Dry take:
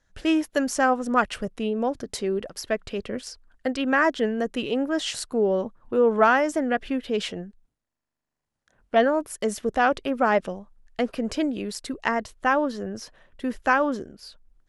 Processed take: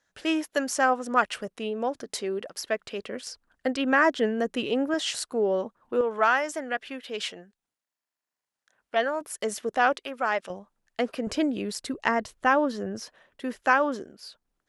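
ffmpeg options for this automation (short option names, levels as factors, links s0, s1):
-af "asetnsamples=n=441:p=0,asendcmd='3.27 highpass f 150;4.94 highpass f 380;6.01 highpass f 1100;9.21 highpass f 490;9.97 highpass f 1300;10.5 highpass f 310;11.27 highpass f 84;13.02 highpass f 350',highpass=f=470:p=1"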